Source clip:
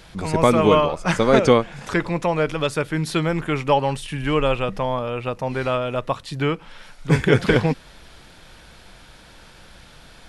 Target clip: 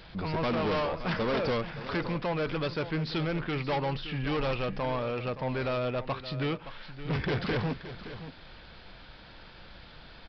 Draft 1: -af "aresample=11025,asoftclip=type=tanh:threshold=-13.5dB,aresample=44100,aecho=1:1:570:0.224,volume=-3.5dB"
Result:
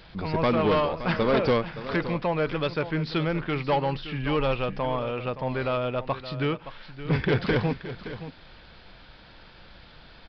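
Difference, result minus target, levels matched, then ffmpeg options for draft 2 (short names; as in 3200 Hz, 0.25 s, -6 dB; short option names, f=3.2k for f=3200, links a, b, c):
soft clip: distortion -7 dB
-af "aresample=11025,asoftclip=type=tanh:threshold=-23dB,aresample=44100,aecho=1:1:570:0.224,volume=-3.5dB"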